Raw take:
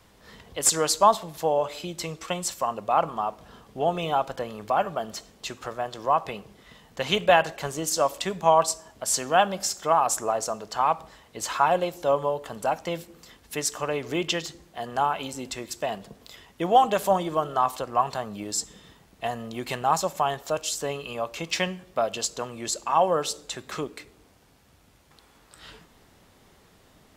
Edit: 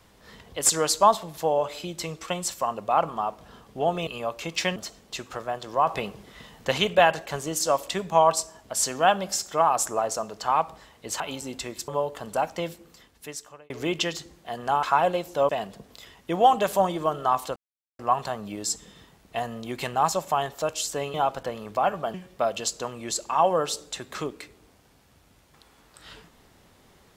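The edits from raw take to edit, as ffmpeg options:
-filter_complex "[0:a]asplit=13[s0][s1][s2][s3][s4][s5][s6][s7][s8][s9][s10][s11][s12];[s0]atrim=end=4.072[s13];[s1]atrim=start=21.018:end=21.712[s14];[s2]atrim=start=5.068:end=6.182[s15];[s3]atrim=start=6.178:end=7.092,asetpts=PTS-STARTPTS,volume=1.68[s16];[s4]atrim=start=7.088:end=11.512[s17];[s5]atrim=start=15.118:end=15.802[s18];[s6]atrim=start=12.168:end=13.99,asetpts=PTS-STARTPTS,afade=t=out:st=0.742:d=1.08[s19];[s7]atrim=start=13.99:end=15.122,asetpts=PTS-STARTPTS,afade=t=in:d=0.004:c=hsin[s20];[s8]atrim=start=11.508:end=12.172[s21];[s9]atrim=start=15.798:end=17.87,asetpts=PTS-STARTPTS,afade=t=out:st=2.068:d=0.004:c=hsin,apad=pad_dur=0.43[s22];[s10]atrim=start=17.87:end=21.022,asetpts=PTS-STARTPTS,afade=t=in:d=0.004:c=hsin[s23];[s11]atrim=start=4.068:end=5.072[s24];[s12]atrim=start=21.708[s25];[s13][s14]acrossfade=d=0.004:c1=hsin:c2=hsin[s26];[s26][s15]acrossfade=d=0.004:c1=hsin:c2=hsin[s27];[s27][s16]acrossfade=d=0.004:c1=hsin:c2=hsin[s28];[s28][s17]acrossfade=d=0.004:c1=hsin:c2=hsin[s29];[s29][s18]acrossfade=d=0.004:c1=hsin:c2=hsin[s30];[s19][s20]concat=n=2:v=0:a=1[s31];[s30][s31]acrossfade=d=0.004:c1=hsin:c2=hsin[s32];[s32][s21]acrossfade=d=0.004:c1=hsin:c2=hsin[s33];[s22][s23]concat=n=2:v=0:a=1[s34];[s33][s34]acrossfade=d=0.004:c1=hsin:c2=hsin[s35];[s35][s24]acrossfade=d=0.004:c1=hsin:c2=hsin[s36];[s36][s25]acrossfade=d=0.004:c1=hsin:c2=hsin"

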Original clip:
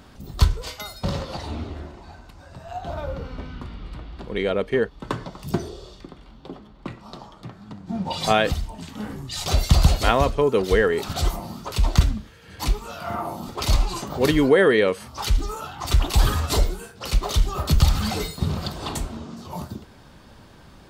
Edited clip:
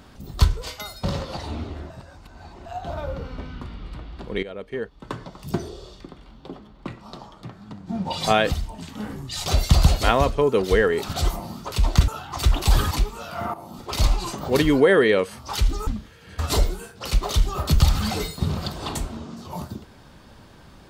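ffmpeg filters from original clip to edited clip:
-filter_complex "[0:a]asplit=9[s0][s1][s2][s3][s4][s5][s6][s7][s8];[s0]atrim=end=1.902[s9];[s1]atrim=start=1.898:end=2.662,asetpts=PTS-STARTPTS,areverse[s10];[s2]atrim=start=2.658:end=4.43,asetpts=PTS-STARTPTS,afade=t=out:st=1.768:d=0.004:c=hsin:silence=0.177828[s11];[s3]atrim=start=4.43:end=12.082,asetpts=PTS-STARTPTS,afade=t=in:d=1.38:silence=0.177828[s12];[s4]atrim=start=15.558:end=16.392[s13];[s5]atrim=start=12.598:end=13.23,asetpts=PTS-STARTPTS,afade=t=out:st=0.628:d=0.004:c=hsin:silence=0.251189[s14];[s6]atrim=start=13.23:end=15.562,asetpts=PTS-STARTPTS,afade=t=in:d=0.51:silence=0.251189[s15];[s7]atrim=start=12.078:end=12.602[s16];[s8]atrim=start=16.388[s17];[s9][s10]acrossfade=d=0.004:c1=hsin:c2=hsin[s18];[s11][s12]concat=n=2:v=0:a=1[s19];[s18][s19]acrossfade=d=0.004:c1=hsin:c2=hsin[s20];[s20][s13]acrossfade=d=0.004:c1=hsin:c2=hsin[s21];[s14][s15]concat=n=2:v=0:a=1[s22];[s21][s22]acrossfade=d=0.004:c1=hsin:c2=hsin[s23];[s23][s16]acrossfade=d=0.004:c1=hsin:c2=hsin[s24];[s24][s17]acrossfade=d=0.004:c1=hsin:c2=hsin"

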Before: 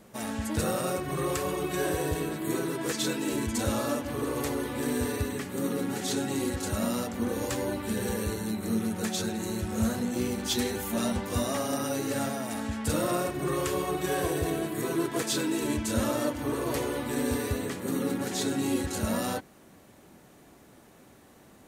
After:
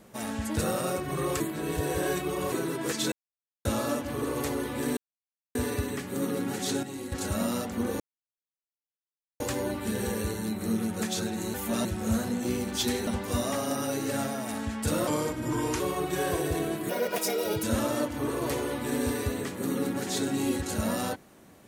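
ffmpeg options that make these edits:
-filter_complex "[0:a]asplit=16[s0][s1][s2][s3][s4][s5][s6][s7][s8][s9][s10][s11][s12][s13][s14][s15];[s0]atrim=end=1.402[s16];[s1]atrim=start=1.398:end=2.522,asetpts=PTS-STARTPTS,areverse[s17];[s2]atrim=start=2.518:end=3.12,asetpts=PTS-STARTPTS,afade=t=out:st=0.598:d=0.004:c=hsin[s18];[s3]atrim=start=3.12:end=3.65,asetpts=PTS-STARTPTS,volume=0[s19];[s4]atrim=start=3.65:end=4.97,asetpts=PTS-STARTPTS,afade=t=in:d=0.004:c=hsin,afade=t=out:st=1.316:d=0.004:c=hsin,apad=pad_dur=0.58[s20];[s5]atrim=start=4.97:end=6.252,asetpts=PTS-STARTPTS,afade=t=in:d=0.004:c=hsin[s21];[s6]atrim=start=6.248:end=6.542,asetpts=PTS-STARTPTS,volume=0.398[s22];[s7]atrim=start=6.538:end=7.42,asetpts=PTS-STARTPTS,afade=t=out:st=0.878:d=0.004:c=hsin,apad=pad_dur=1.4[s23];[s8]atrim=start=7.42:end=9.562,asetpts=PTS-STARTPTS,afade=t=in:d=0.004:c=hsin[s24];[s9]atrim=start=10.778:end=11.092[s25];[s10]atrim=start=9.558:end=10.782[s26];[s11]atrim=start=11.088:end=13.094[s27];[s12]atrim=start=13.09:end=13.71,asetpts=PTS-STARTPTS,asetrate=37485,aresample=44100,atrim=end_sample=32167,asetpts=PTS-STARTPTS[s28];[s13]atrim=start=13.706:end=14.804[s29];[s14]atrim=start=14.8:end=15.88,asetpts=PTS-STARTPTS,asetrate=63945,aresample=44100[s30];[s15]atrim=start=15.876[s31];[s16][s17]acrossfade=d=0.004:c1=hsin:c2=hsin[s32];[s18][s19][s20][s21]concat=n=4:v=0:a=1[s33];[s32][s33]acrossfade=d=0.004:c1=hsin:c2=hsin[s34];[s34][s22]acrossfade=d=0.004:c1=hsin:c2=hsin[s35];[s23][s24]concat=n=2:v=0:a=1[s36];[s35][s36]acrossfade=d=0.004:c1=hsin:c2=hsin[s37];[s37][s25]acrossfade=d=0.004:c1=hsin:c2=hsin[s38];[s38][s26]acrossfade=d=0.004:c1=hsin:c2=hsin[s39];[s39][s27]acrossfade=d=0.004:c1=hsin:c2=hsin[s40];[s40][s28]acrossfade=d=0.004:c1=hsin:c2=hsin[s41];[s41][s29]acrossfade=d=0.004:c1=hsin:c2=hsin[s42];[s42][s30]acrossfade=d=0.004:c1=hsin:c2=hsin[s43];[s43][s31]acrossfade=d=0.004:c1=hsin:c2=hsin"

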